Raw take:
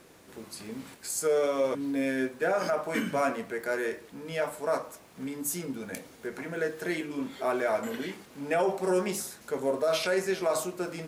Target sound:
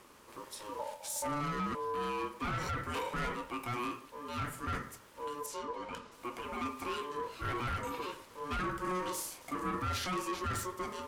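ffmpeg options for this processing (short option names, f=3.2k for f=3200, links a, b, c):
-filter_complex "[0:a]asettb=1/sr,asplit=3[a][b][c];[a]atrim=end=0.794[d];[b]atrim=start=0.79:end=1.41,asetpts=PTS-STARTPTS,afade=t=in:d=0.004:c=qsin,afade=t=out:st=0.616:d=0.004:c=qsin,lowshelf=f=240:t=q:w=3:g=13[e];[c]atrim=start=1.406[f];[d][e]acrossfade=d=0.004:c1=hsin:c2=qsin[g];[g][f]acrossfade=d=0.004:c1=qsin:c2=hsin,asettb=1/sr,asplit=3[h][i][j];[h]atrim=end=5.464[k];[i]atrim=start=5.46:end=6.12,asetpts=PTS-STARTPTS,afade=t=in:d=0.004:c=qsin,afade=t=out:st=0.656:d=0.004:c=qsin,lowpass=5.1k[l];[j]atrim=start=6.116[m];[k][l]acrossfade=d=0.004:c1=hsin:c2=qsin[n];[n][m]acrossfade=d=0.004:c1=qsin:c2=hsin,asoftclip=type=tanh:threshold=-29dB,aeval=exprs='val(0)*sin(2*PI*730*n/s)':c=same,asettb=1/sr,asplit=3[o][p][q];[o]atrim=end=9.154[r];[p]atrim=start=9.15:end=9.89,asetpts=PTS-STARTPTS,afade=t=in:d=0.004:c=qsin,afade=t=out:st=0.736:d=0.004:c=qsin,asplit=2[s][t];[t]adelay=35,volume=-6.5dB[u];[s][u]amix=inputs=2:normalize=0,atrim=end_sample=32634[v];[q]atrim=start=9.886[w];[r][v]acrossfade=d=0.004:c1=hsin:c2=qsin[x];[x][w]acrossfade=d=0.004:c1=qsin:c2=hsin"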